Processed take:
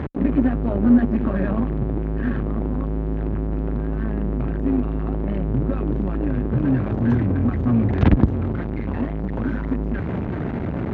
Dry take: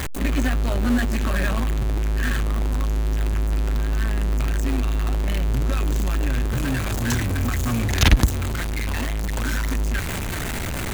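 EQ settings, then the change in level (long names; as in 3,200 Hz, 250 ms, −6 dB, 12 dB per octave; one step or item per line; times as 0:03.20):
high-pass filter 200 Hz 12 dB per octave
head-to-tape spacing loss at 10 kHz 42 dB
spectral tilt −4 dB per octave
+2.0 dB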